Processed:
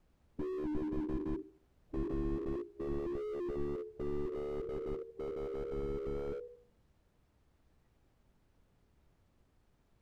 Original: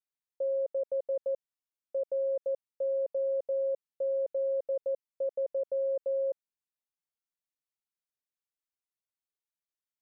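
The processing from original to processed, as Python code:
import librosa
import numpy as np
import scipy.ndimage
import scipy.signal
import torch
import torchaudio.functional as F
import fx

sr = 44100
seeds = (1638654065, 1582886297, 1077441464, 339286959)

p1 = fx.pitch_glide(x, sr, semitones=-8.5, runs='ending unshifted')
p2 = p1 * np.sin(2.0 * np.pi * 36.0 * np.arange(len(p1)) / sr)
p3 = fx.quant_dither(p2, sr, seeds[0], bits=12, dither='triangular')
p4 = fx.tilt_eq(p3, sr, slope=-6.0)
p5 = fx.hum_notches(p4, sr, base_hz=50, count=7)
p6 = p5 + fx.echo_thinned(p5, sr, ms=79, feedback_pct=67, hz=590.0, wet_db=-18.0, dry=0)
p7 = fx.noise_reduce_blind(p6, sr, reduce_db=8)
p8 = fx.slew_limit(p7, sr, full_power_hz=1.7)
y = F.gain(torch.from_numpy(p8), 9.5).numpy()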